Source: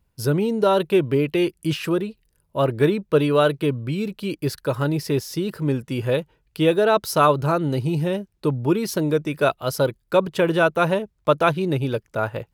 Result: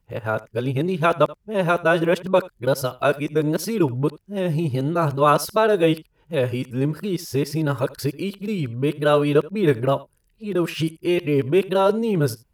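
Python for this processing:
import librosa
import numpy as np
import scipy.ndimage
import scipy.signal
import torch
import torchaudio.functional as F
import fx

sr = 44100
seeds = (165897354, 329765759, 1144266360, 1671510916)

p1 = np.flip(x).copy()
p2 = fx.peak_eq(p1, sr, hz=3900.0, db=-2.5, octaves=0.44)
y = p2 + fx.echo_single(p2, sr, ms=81, db=-20.5, dry=0)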